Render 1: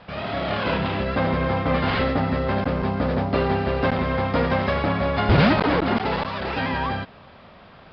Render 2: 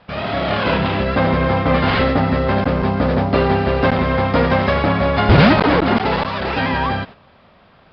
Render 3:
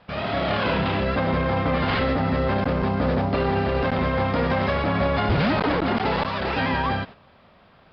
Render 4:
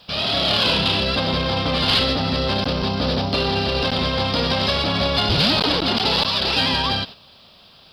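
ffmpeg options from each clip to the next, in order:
-af "agate=range=-9dB:threshold=-39dB:ratio=16:detection=peak,volume=6dB"
-af "alimiter=limit=-10dB:level=0:latency=1:release=20,volume=-4dB"
-af "aexciter=amount=5:drive=9.4:freq=3k"

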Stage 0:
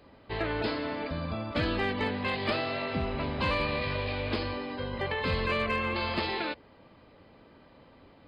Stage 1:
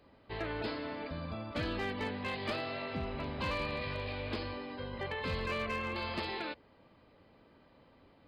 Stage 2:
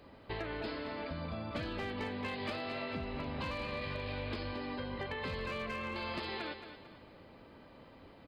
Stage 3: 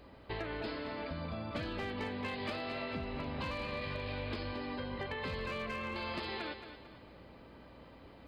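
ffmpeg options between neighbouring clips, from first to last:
-af "asoftclip=type=hard:threshold=-22dB,volume=-6.5dB"
-af "acompressor=threshold=-43dB:ratio=6,aecho=1:1:223|446|669|892:0.316|0.12|0.0457|0.0174,volume=6dB"
-af "areverse,acompressor=mode=upward:threshold=-52dB:ratio=2.5,areverse,aeval=exprs='val(0)+0.000794*(sin(2*PI*60*n/s)+sin(2*PI*2*60*n/s)/2+sin(2*PI*3*60*n/s)/3+sin(2*PI*4*60*n/s)/4+sin(2*PI*5*60*n/s)/5)':c=same"

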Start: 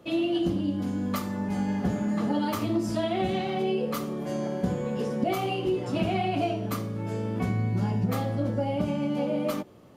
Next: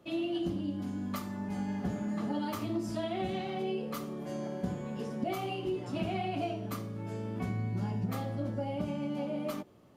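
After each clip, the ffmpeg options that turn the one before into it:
-af "bandreject=f=490:w=12,volume=-7dB"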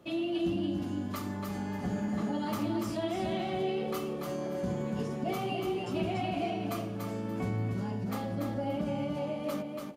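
-filter_complex "[0:a]asplit=2[a][b];[b]alimiter=level_in=7.5dB:limit=-24dB:level=0:latency=1,volume=-7.5dB,volume=2dB[c];[a][c]amix=inputs=2:normalize=0,aecho=1:1:288|576|864:0.596|0.137|0.0315,volume=-4dB"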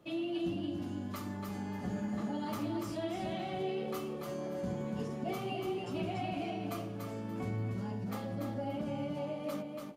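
-af "flanger=delay=6.5:depth=2.8:regen=-66:speed=0.31:shape=sinusoidal"

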